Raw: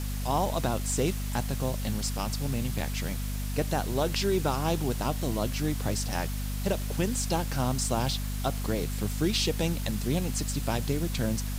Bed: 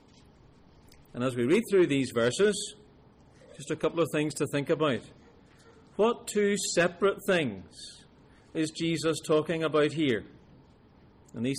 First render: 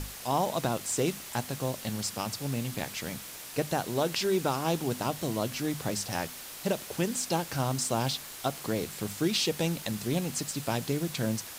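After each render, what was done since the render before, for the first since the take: hum notches 50/100/150/200/250 Hz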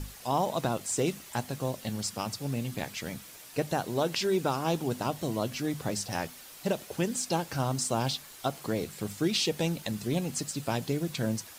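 noise reduction 7 dB, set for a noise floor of -44 dBFS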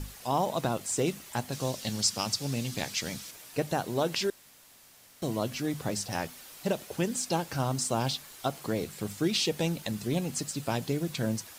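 1.52–3.31 s: peaking EQ 5.3 kHz +9.5 dB 1.6 oct; 4.30–5.22 s: room tone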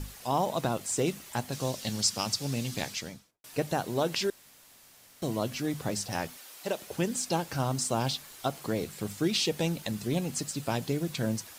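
2.81–3.44 s: studio fade out; 6.37–6.82 s: Bessel high-pass 380 Hz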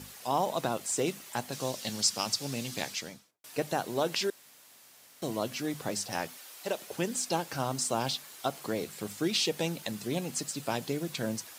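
high-pass 79 Hz; bass shelf 150 Hz -11 dB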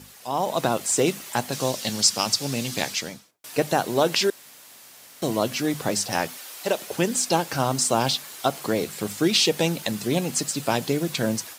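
level rider gain up to 9 dB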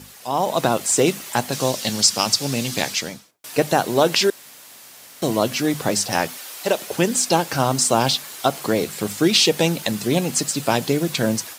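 trim +4 dB; peak limiter -2 dBFS, peak gain reduction 2.5 dB

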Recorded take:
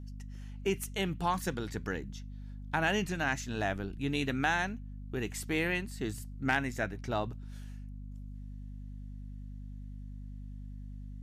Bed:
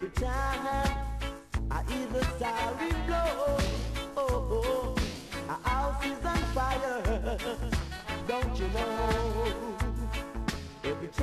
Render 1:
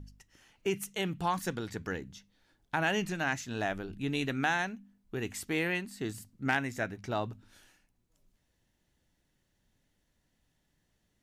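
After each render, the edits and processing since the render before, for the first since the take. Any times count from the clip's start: de-hum 50 Hz, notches 5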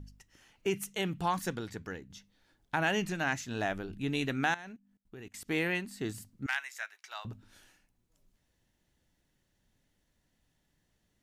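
1.43–2.10 s: fade out, to -8 dB; 4.54–5.48 s: level held to a coarse grid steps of 23 dB; 6.46–7.25 s: Bessel high-pass 1.5 kHz, order 4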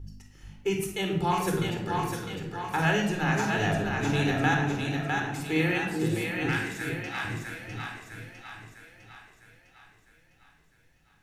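on a send: two-band feedback delay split 510 Hz, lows 434 ms, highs 654 ms, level -3.5 dB; on the sum: simulated room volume 2200 m³, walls furnished, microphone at 4.1 m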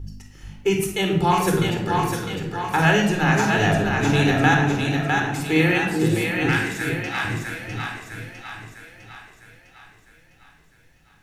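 trim +7.5 dB

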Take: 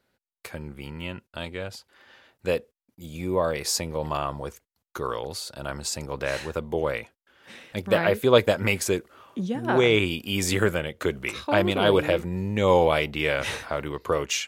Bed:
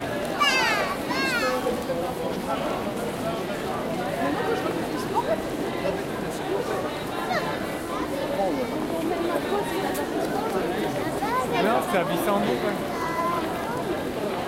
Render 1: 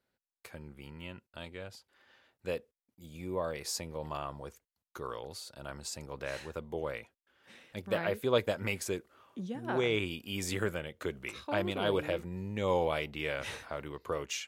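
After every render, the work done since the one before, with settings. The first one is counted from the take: trim -10.5 dB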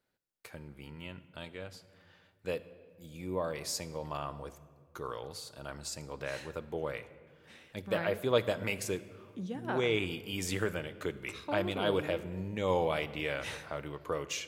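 simulated room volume 2400 m³, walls mixed, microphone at 0.47 m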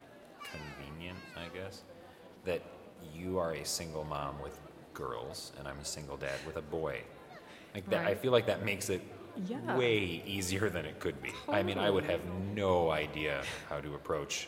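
add bed -27 dB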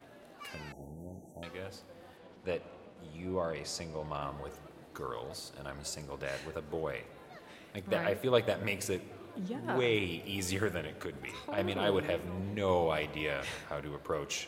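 0.72–1.43 s: brick-wall FIR band-stop 910–5600 Hz; 2.17–4.22 s: distance through air 54 m; 10.95–11.58 s: compression 2.5:1, threshold -36 dBFS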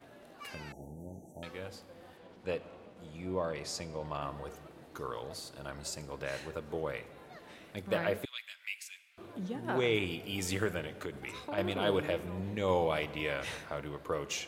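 8.25–9.18 s: ladder high-pass 1.9 kHz, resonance 40%

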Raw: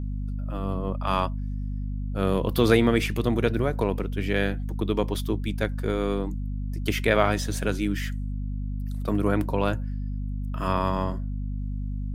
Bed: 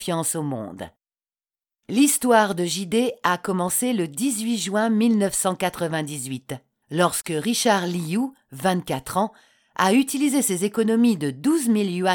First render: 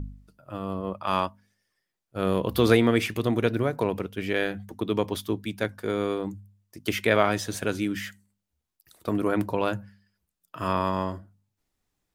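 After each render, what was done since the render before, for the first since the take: de-hum 50 Hz, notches 5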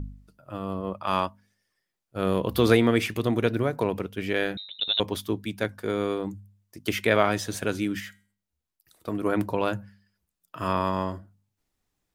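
4.57–5.00 s: frequency inversion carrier 3.9 kHz; 8.00–9.25 s: feedback comb 160 Hz, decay 0.39 s, mix 40%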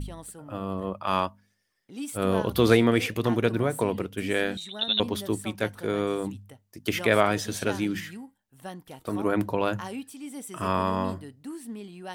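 add bed -18.5 dB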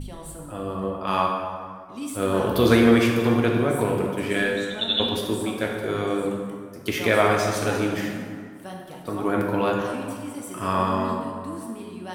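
plate-style reverb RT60 2.1 s, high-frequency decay 0.55×, DRR -1 dB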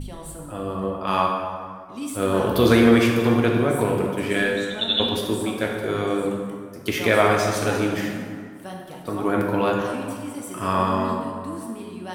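trim +1.5 dB; peak limiter -3 dBFS, peak gain reduction 1.5 dB

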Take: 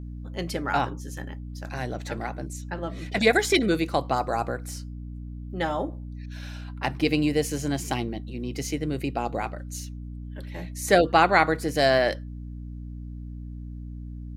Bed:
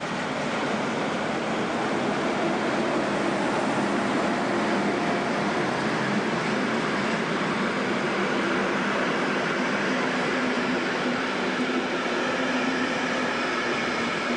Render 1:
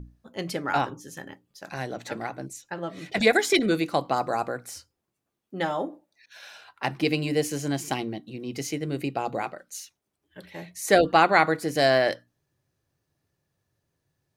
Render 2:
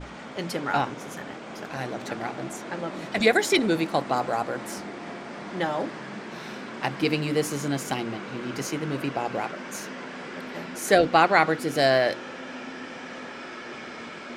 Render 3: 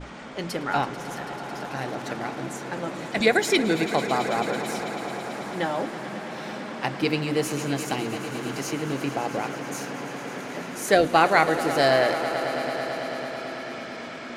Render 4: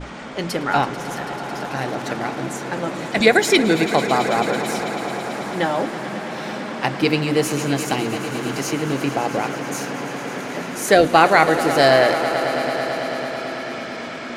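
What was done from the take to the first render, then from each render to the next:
hum notches 60/120/180/240/300 Hz
add bed -12.5 dB
echo with a slow build-up 110 ms, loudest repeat 5, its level -15.5 dB
trim +6 dB; peak limiter -1 dBFS, peak gain reduction 2 dB

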